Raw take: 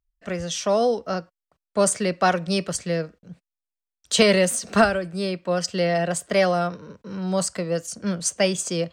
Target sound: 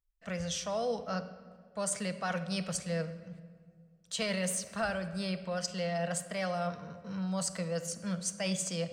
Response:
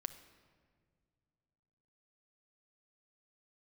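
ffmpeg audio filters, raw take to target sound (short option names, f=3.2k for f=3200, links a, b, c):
-filter_complex "[0:a]equalizer=f=350:w=2.8:g=-14.5,areverse,acompressor=threshold=-26dB:ratio=5,areverse[a];[1:a]atrim=start_sample=2205[b];[a][b]afir=irnorm=-1:irlink=0,volume=-2.5dB"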